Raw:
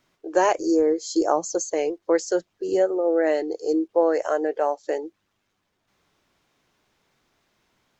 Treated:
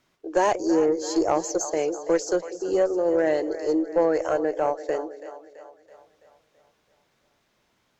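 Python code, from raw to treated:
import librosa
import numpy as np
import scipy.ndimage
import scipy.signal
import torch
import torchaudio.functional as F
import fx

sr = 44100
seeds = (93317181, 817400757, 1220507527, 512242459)

y = fx.echo_split(x, sr, split_hz=510.0, low_ms=192, high_ms=331, feedback_pct=52, wet_db=-13)
y = fx.tube_stage(y, sr, drive_db=10.0, bias=0.25)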